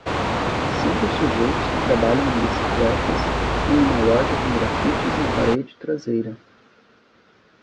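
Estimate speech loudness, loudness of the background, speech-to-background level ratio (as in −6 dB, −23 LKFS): −23.5 LKFS, −22.5 LKFS, −1.0 dB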